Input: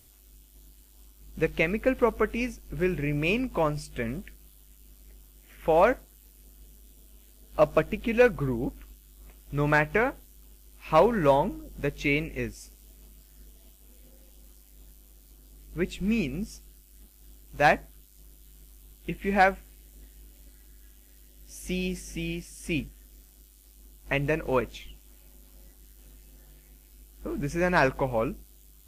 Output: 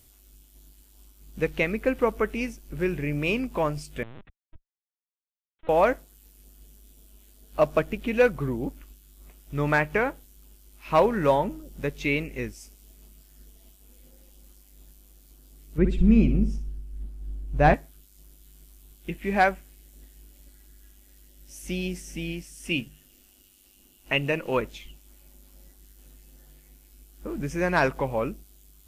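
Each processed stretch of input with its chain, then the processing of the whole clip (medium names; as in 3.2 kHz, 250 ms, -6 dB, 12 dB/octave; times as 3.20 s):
4.03–5.69 s: high-pass 200 Hz + Schmitt trigger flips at -38 dBFS + LPC vocoder at 8 kHz pitch kept
15.78–17.74 s: tilt EQ -3.5 dB/octave + flutter echo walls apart 10.3 m, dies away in 0.35 s
22.65–24.57 s: peaking EQ 2.8 kHz +12 dB 0.21 oct + hum notches 50/100/150/200 Hz
whole clip: none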